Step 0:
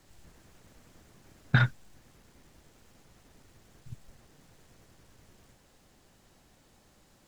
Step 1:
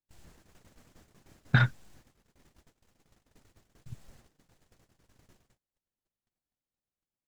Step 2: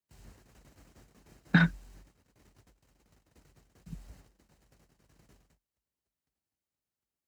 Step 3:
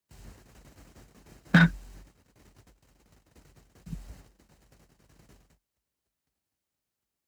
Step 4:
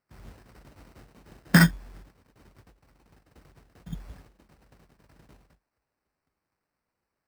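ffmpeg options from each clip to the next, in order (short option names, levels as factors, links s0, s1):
-af "agate=range=0.0141:threshold=0.00158:ratio=16:detection=peak"
-af "bandreject=f=3400:w=14,afreqshift=45"
-af "volume=6.68,asoftclip=hard,volume=0.15,volume=1.78"
-af "acrusher=samples=13:mix=1:aa=0.000001,volume=1.26"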